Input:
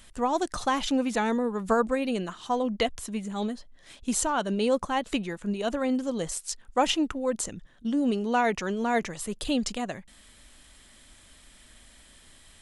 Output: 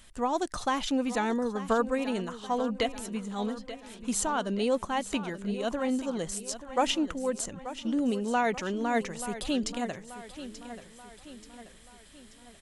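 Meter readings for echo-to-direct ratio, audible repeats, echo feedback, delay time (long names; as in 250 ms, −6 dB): −12.0 dB, 4, 49%, 883 ms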